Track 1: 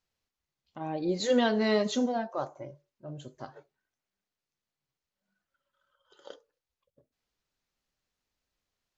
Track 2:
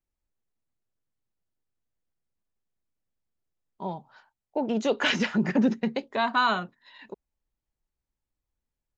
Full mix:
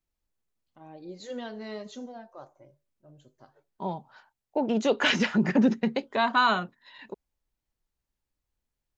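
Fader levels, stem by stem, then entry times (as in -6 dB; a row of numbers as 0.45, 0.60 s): -12.5, +1.0 dB; 0.00, 0.00 s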